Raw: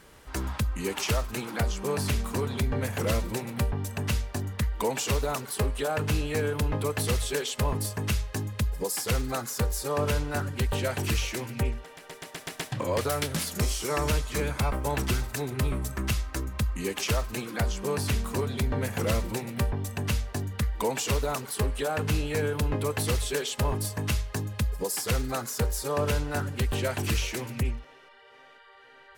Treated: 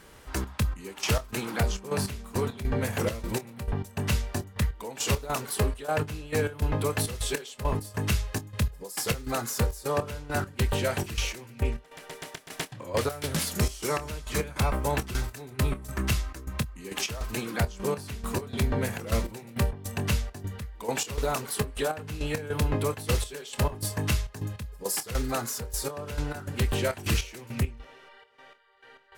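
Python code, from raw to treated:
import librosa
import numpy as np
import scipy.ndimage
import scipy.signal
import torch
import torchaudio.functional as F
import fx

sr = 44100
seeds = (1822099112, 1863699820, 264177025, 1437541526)

y = fx.step_gate(x, sr, bpm=102, pattern='xxx.x..x.', floor_db=-12.0, edge_ms=4.5)
y = fx.doubler(y, sr, ms=26.0, db=-13.0)
y = y * librosa.db_to_amplitude(1.5)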